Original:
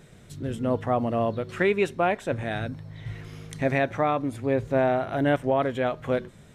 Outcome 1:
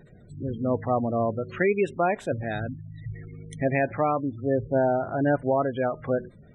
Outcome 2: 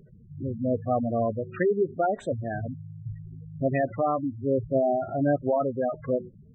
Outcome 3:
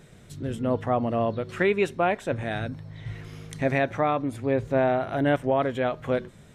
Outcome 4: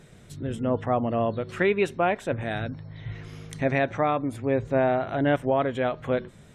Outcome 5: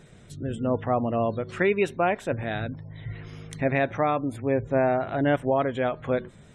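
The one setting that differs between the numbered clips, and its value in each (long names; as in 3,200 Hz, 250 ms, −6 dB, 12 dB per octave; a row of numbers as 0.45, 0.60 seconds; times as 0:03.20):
gate on every frequency bin, under each frame's peak: −20, −10, −60, −45, −35 decibels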